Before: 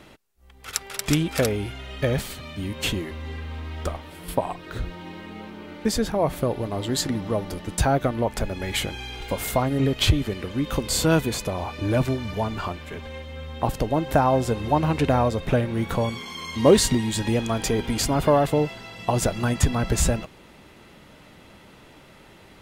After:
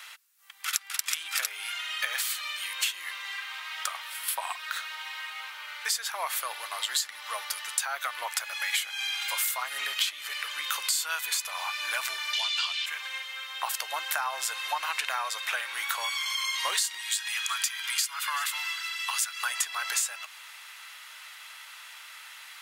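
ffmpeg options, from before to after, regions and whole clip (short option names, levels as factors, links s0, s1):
-filter_complex "[0:a]asettb=1/sr,asplit=3[s0][s1][s2];[s0]atrim=end=12.334[s3];[s1]atrim=start=12.33:end=12.86,asetpts=PTS-STARTPTS,afade=t=in:d=0.004:c=qsin,afade=t=out:st=0.526:d=0.004:c=qsin,lowpass=6000,highshelf=f=2200:t=q:w=1.5:g=12.5[s4];[s2]atrim=start=12.856[s5];[s3][s4]acrossfade=d=0.004:c1=hsin:c2=qsin[s6];[s6][s5]acrossfade=d=0.004:c1=qsin:c2=hsin,asettb=1/sr,asplit=3[s7][s8][s9];[s7]atrim=end=17.014[s10];[s8]atrim=start=17.01:end=19.43,asetpts=PTS-STARTPTS,afade=t=in:d=0.004:c=qsin,afade=t=out:st=2.416:d=0.004:c=qsin,highpass=f=1100:w=0.5412,highpass=f=1100:w=1.3066,aecho=1:1:377:0.0708,atrim=end_sample=106722[s11];[s9]atrim=start=19.426[s12];[s10][s11]acrossfade=d=0.004:c1=hsin:c2=qsin[s13];[s13][s12]acrossfade=d=0.004:c1=qsin:c2=hsin,highpass=f=1200:w=0.5412,highpass=f=1200:w=1.3066,highshelf=f=6300:g=6.5,acompressor=threshold=0.02:ratio=6,volume=2.37"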